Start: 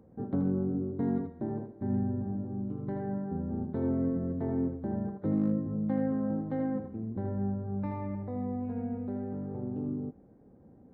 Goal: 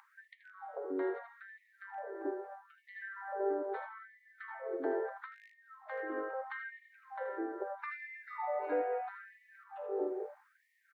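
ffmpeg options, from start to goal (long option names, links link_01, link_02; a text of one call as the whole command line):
ffmpeg -i in.wav -filter_complex "[0:a]asettb=1/sr,asplit=3[link_01][link_02][link_03];[link_01]atrim=end=7.854[link_04];[link_02]atrim=start=7.85:end=8.76,asetpts=PTS-STARTPTS,afade=type=in:duration=0.004:curve=qsin,afade=type=out:start_time=0.906:duration=0.004:curve=qsin,aecho=1:1:6.6:0.66,atrim=end_sample=40131[link_05];[link_03]atrim=start=8.756[link_06];[link_04][link_05]acrossfade=duration=0.004:curve1=hsin:curve2=qsin[link_07];[link_07][link_06]acrossfade=duration=0.004:curve1=qsin:curve2=hsin,alimiter=level_in=6.5dB:limit=-24dB:level=0:latency=1:release=347,volume=-6.5dB,equalizer=frequency=1700:width=0.94:gain=10,acrossover=split=810[link_08][link_09];[link_08]adelay=440[link_10];[link_10][link_09]amix=inputs=2:normalize=0,afftfilt=real='re*gte(b*sr/1024,290*pow(1800/290,0.5+0.5*sin(2*PI*0.77*pts/sr)))':imag='im*gte(b*sr/1024,290*pow(1800/290,0.5+0.5*sin(2*PI*0.77*pts/sr)))':win_size=1024:overlap=0.75,volume=10.5dB" out.wav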